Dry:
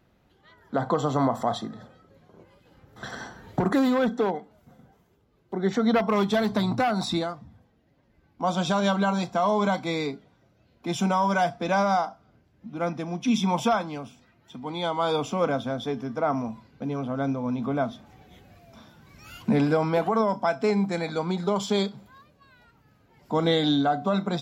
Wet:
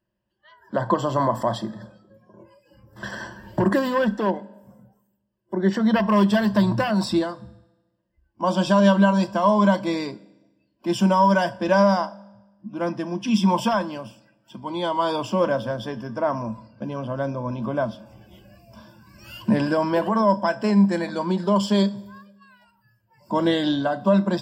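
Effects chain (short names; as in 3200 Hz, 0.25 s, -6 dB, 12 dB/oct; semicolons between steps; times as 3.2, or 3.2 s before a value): spectral noise reduction 19 dB; ripple EQ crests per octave 1.3, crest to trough 13 dB; reverb RT60 1.1 s, pre-delay 3 ms, DRR 19 dB; gain +1.5 dB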